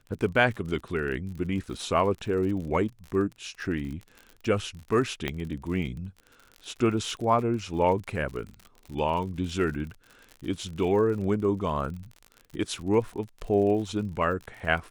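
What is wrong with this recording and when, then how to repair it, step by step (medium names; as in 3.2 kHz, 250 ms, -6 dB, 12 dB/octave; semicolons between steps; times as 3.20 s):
crackle 52 per s -36 dBFS
5.28 s: pop -15 dBFS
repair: de-click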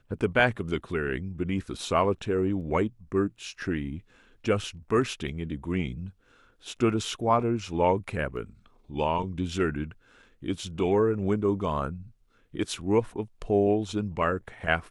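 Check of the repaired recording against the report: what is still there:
5.28 s: pop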